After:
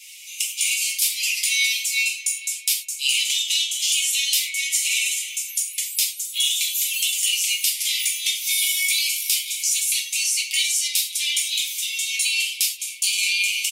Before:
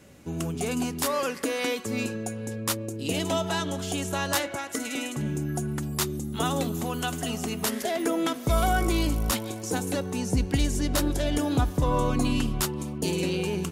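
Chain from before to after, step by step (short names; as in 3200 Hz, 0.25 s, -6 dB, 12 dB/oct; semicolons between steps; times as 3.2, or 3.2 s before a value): steep high-pass 2200 Hz 96 dB/oct; comb 6.3 ms, depth 57%; compressor 8:1, threshold -36 dBFS, peak gain reduction 13 dB; sine folder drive 11 dB, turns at -6.5 dBFS; non-linear reverb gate 0.13 s falling, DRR -2 dB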